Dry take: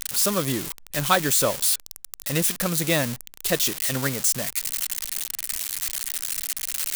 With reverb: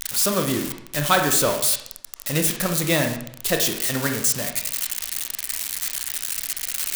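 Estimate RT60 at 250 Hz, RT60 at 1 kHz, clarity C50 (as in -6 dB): 0.75 s, 0.70 s, 7.0 dB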